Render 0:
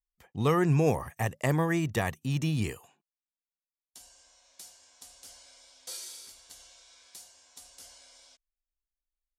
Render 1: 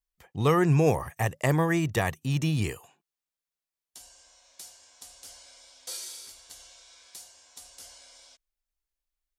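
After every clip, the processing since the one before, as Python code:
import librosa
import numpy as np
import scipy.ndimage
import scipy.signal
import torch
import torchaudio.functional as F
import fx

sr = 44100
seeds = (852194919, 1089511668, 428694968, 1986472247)

y = fx.peak_eq(x, sr, hz=230.0, db=-5.0, octaves=0.39)
y = y * librosa.db_to_amplitude(3.0)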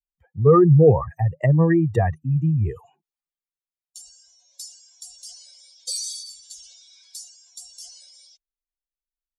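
y = fx.spec_expand(x, sr, power=2.5)
y = fx.band_widen(y, sr, depth_pct=40)
y = y * librosa.db_to_amplitude(6.5)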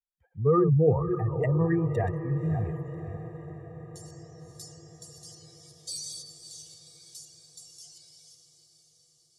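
y = fx.reverse_delay(x, sr, ms=288, wet_db=-9.0)
y = fx.echo_diffused(y, sr, ms=570, feedback_pct=62, wet_db=-12)
y = y * librosa.db_to_amplitude(-8.5)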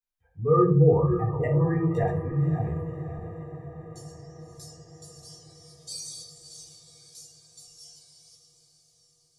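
y = fx.room_shoebox(x, sr, seeds[0], volume_m3=240.0, walls='furnished', distance_m=3.8)
y = y * librosa.db_to_amplitude(-6.5)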